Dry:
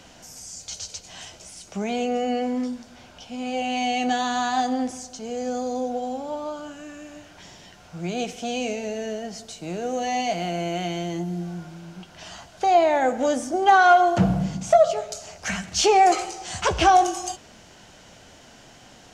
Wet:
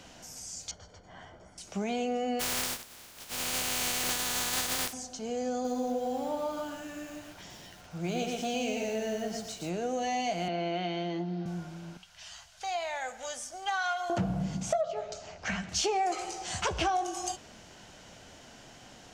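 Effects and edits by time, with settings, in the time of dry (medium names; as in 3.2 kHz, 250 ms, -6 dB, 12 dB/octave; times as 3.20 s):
0.71–1.58 s: Savitzky-Golay filter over 41 samples
2.39–4.92 s: spectral contrast reduction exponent 0.17
5.53–9.70 s: bit-crushed delay 116 ms, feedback 35%, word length 8-bit, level -3.5 dB
10.48–11.46 s: elliptic band-pass 190–4500 Hz
11.97–14.10 s: amplifier tone stack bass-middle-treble 10-0-10
14.81–15.69 s: distance through air 120 m
whole clip: compression 4:1, threshold -25 dBFS; trim -3 dB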